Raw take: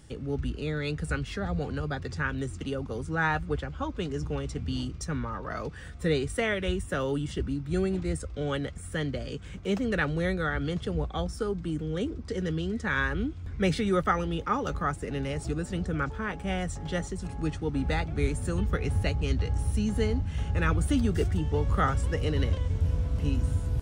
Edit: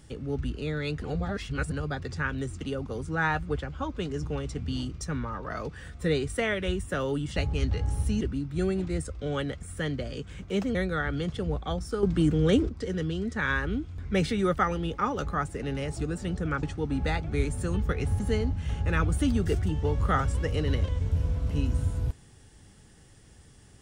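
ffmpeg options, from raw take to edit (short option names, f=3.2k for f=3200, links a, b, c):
-filter_complex "[0:a]asplit=10[a][b][c][d][e][f][g][h][i][j];[a]atrim=end=1.022[k];[b]atrim=start=1.018:end=1.722,asetpts=PTS-STARTPTS,areverse[l];[c]atrim=start=1.718:end=7.362[m];[d]atrim=start=19.038:end=19.892[n];[e]atrim=start=7.358:end=9.902[o];[f]atrim=start=10.228:end=11.512[p];[g]atrim=start=11.508:end=12.172,asetpts=PTS-STARTPTS,volume=8.5dB[q];[h]atrim=start=12.168:end=16.112[r];[i]atrim=start=17.468:end=19.042[s];[j]atrim=start=19.888[t];[k][l]acrossfade=d=0.004:c1=hsin:c2=hsin[u];[u][m]acrossfade=d=0.004:c1=hsin:c2=hsin[v];[v][n]acrossfade=d=0.004:c1=hsin:c2=hsin[w];[w][o]acrossfade=d=0.004:c1=hsin:c2=hsin[x];[x][p]acrossfade=d=0.004:c1=hsin:c2=hsin[y];[y][q]acrossfade=d=0.004:c1=hsin:c2=hsin[z];[z][r]acrossfade=d=0.004:c1=hsin:c2=hsin[aa];[aa][s]acrossfade=d=0.004:c1=hsin:c2=hsin[ab];[ab][t]acrossfade=d=0.004:c1=hsin:c2=hsin"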